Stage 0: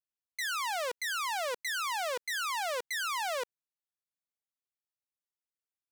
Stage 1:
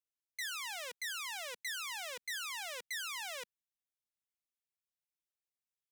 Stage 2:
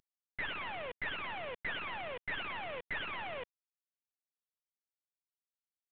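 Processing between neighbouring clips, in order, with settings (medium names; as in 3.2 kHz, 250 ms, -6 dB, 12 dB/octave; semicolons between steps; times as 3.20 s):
high-order bell 620 Hz -10 dB 2.7 oct; band-stop 4.5 kHz, Q 13; trim -4 dB
CVSD coder 16 kbps; trim +5.5 dB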